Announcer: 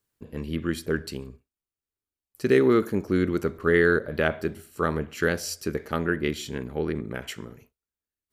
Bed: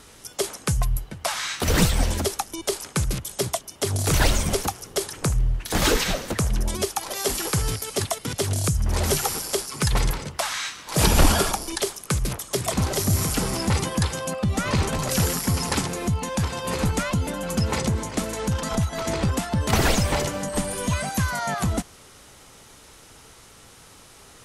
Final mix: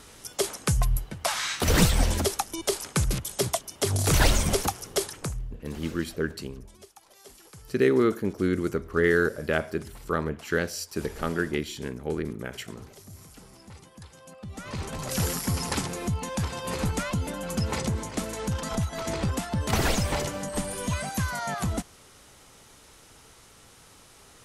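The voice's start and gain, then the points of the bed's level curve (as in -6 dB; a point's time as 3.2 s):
5.30 s, -2.0 dB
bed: 5 s -1 dB
5.83 s -25 dB
13.94 s -25 dB
15.25 s -4.5 dB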